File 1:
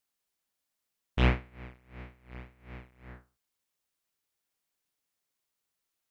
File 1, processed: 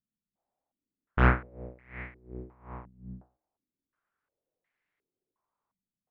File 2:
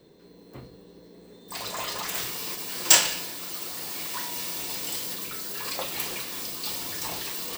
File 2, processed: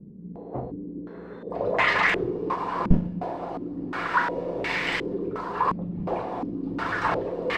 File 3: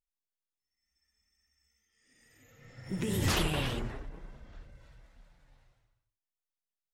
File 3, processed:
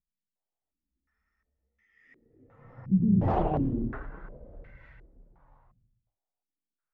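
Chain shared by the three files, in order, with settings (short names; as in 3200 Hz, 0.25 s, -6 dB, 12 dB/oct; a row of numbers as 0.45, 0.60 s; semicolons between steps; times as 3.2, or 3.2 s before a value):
tracing distortion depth 0.036 ms; de-hum 79.6 Hz, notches 10; stepped low-pass 2.8 Hz 200–2000 Hz; match loudness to -27 LUFS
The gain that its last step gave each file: +2.0, +9.5, +2.0 dB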